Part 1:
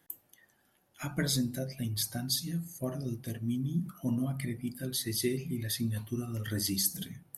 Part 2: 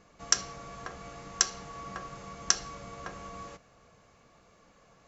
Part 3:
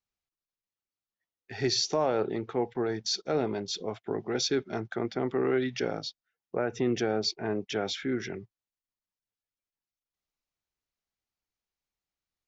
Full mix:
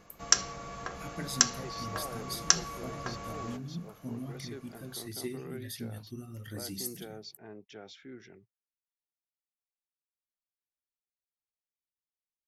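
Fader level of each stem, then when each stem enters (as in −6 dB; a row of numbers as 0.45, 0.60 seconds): −8.0, +2.0, −17.0 decibels; 0.00, 0.00, 0.00 seconds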